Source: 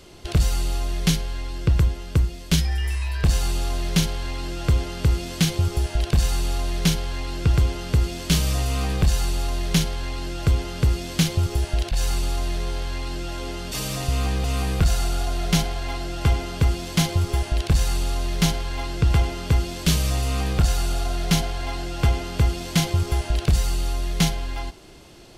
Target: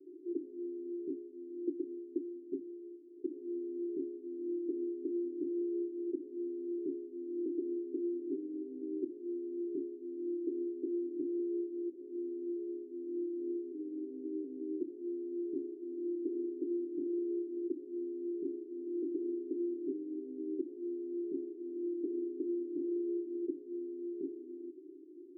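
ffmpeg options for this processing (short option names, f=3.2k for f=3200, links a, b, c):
-af "asuperpass=centerf=330:order=8:qfactor=2.9,volume=1dB"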